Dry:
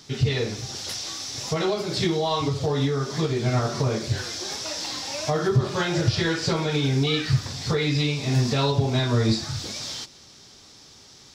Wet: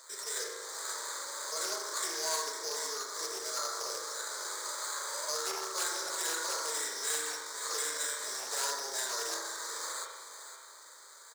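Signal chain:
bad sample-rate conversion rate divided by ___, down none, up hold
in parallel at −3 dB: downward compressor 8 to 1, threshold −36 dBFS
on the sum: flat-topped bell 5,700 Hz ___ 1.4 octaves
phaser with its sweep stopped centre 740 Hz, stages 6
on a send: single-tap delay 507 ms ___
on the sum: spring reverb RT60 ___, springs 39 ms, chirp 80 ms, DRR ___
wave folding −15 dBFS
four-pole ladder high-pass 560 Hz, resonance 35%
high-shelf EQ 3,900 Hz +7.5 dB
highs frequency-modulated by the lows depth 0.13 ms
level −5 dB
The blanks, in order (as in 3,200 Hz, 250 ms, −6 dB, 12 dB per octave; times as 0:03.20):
8×, +13 dB, −10.5 dB, 1.2 s, 0.5 dB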